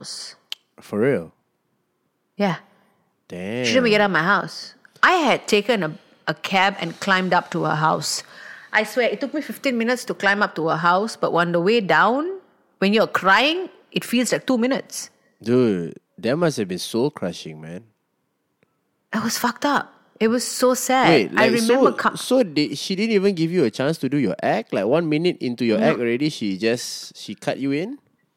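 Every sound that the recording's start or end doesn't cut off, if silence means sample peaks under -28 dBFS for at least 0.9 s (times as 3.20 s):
2.39–17.78 s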